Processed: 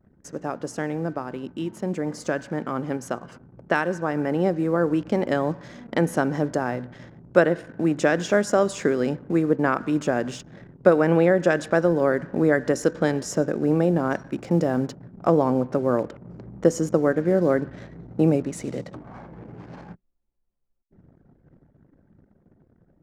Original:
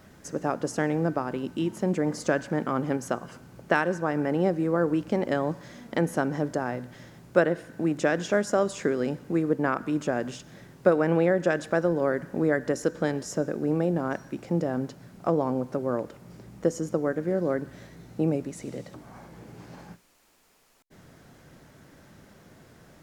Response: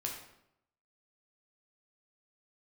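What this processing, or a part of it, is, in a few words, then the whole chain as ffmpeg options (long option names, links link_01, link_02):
voice memo with heavy noise removal: -filter_complex "[0:a]asettb=1/sr,asplit=3[link_01][link_02][link_03];[link_01]atrim=end=14.284[link_04];[link_02]atrim=start=14.28:end=14.96,asetpts=PTS-STARTPTS,afade=type=in:duration=0.004:curve=qsin,afade=type=out:start_time=0.676:duration=0.004:curve=qsin,highshelf=frequency=5100:gain=3.5[link_05];[link_03]atrim=start=14.956[link_06];[link_04][link_05]acrossfade=duration=0.004:curve1=hsin:curve2=qsin[link_07];[link_07][link_06]acrossfade=duration=0.004:curve1=qsin:curve2=hsin,anlmdn=0.01,dynaudnorm=framelen=740:gausssize=11:maxgain=11.5dB,volume=-2dB"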